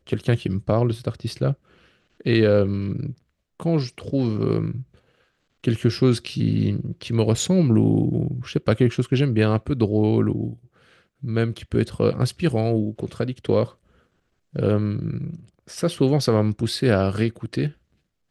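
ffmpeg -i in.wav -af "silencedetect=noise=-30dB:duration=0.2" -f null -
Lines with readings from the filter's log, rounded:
silence_start: 1.53
silence_end: 2.21 | silence_duration: 0.67
silence_start: 3.12
silence_end: 3.60 | silence_duration: 0.48
silence_start: 4.82
silence_end: 5.64 | silence_duration: 0.82
silence_start: 10.53
silence_end: 11.24 | silence_duration: 0.70
silence_start: 13.66
silence_end: 14.55 | silence_duration: 0.90
silence_start: 15.36
silence_end: 15.70 | silence_duration: 0.35
silence_start: 17.69
silence_end: 18.30 | silence_duration: 0.61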